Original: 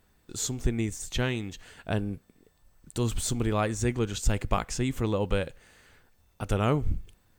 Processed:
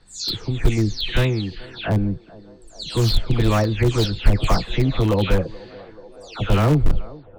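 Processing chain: delay that grows with frequency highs early, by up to 284 ms; resonant low-pass 4.3 kHz, resonance Q 4.7; band-passed feedback delay 432 ms, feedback 82%, band-pass 590 Hz, level -19 dB; in parallel at -8.5 dB: integer overflow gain 20 dB; on the sum: tilt EQ -1.5 dB/octave; trim +4.5 dB

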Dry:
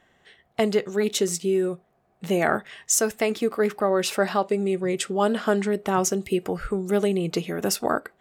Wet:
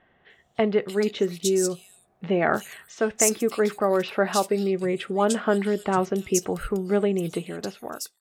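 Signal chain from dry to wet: fade out at the end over 1.16 s; bands offset in time lows, highs 300 ms, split 3.4 kHz

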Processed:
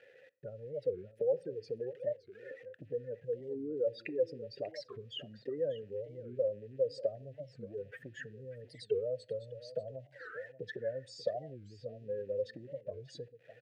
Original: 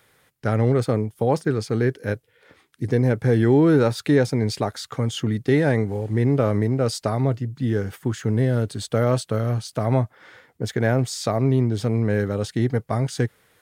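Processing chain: spectral contrast enhancement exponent 2.6; dynamic bell 310 Hz, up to -5 dB, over -30 dBFS, Q 0.82; in parallel at -3 dB: peak limiter -23 dBFS, peak gain reduction 10.5 dB; on the sum: compression 8:1, threshold -30 dBFS, peak gain reduction 14.5 dB; small samples zeroed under -53.5 dBFS; vowel filter e; delay 589 ms -15 dB; on a send at -19.5 dB: reverberation RT60 0.50 s, pre-delay 6 ms; on the sum: warped record 45 rpm, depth 250 cents; trim +7.5 dB

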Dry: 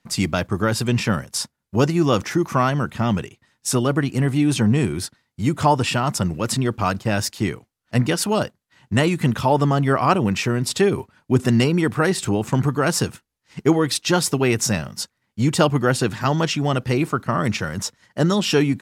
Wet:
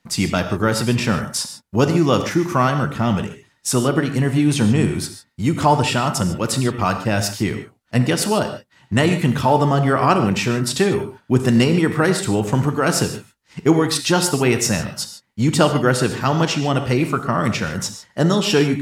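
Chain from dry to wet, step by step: gated-style reverb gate 170 ms flat, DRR 7 dB; trim +1.5 dB

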